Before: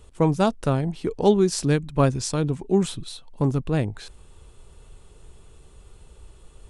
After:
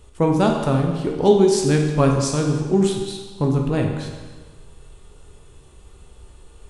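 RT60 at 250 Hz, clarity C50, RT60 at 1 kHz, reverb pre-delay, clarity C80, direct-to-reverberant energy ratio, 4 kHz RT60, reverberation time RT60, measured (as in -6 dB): 1.4 s, 4.0 dB, 1.4 s, 13 ms, 5.5 dB, 1.0 dB, 1.3 s, 1.4 s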